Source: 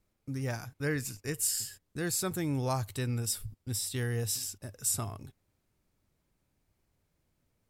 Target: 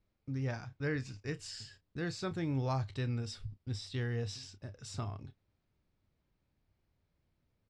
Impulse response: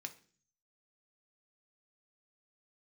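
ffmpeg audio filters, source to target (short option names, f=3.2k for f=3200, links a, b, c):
-filter_complex "[0:a]lowpass=f=5k:w=0.5412,lowpass=f=5k:w=1.3066,equalizer=f=69:t=o:w=2.3:g=3.5,asplit=2[a][b];[b]adelay=30,volume=-13dB[c];[a][c]amix=inputs=2:normalize=0,volume=-4dB"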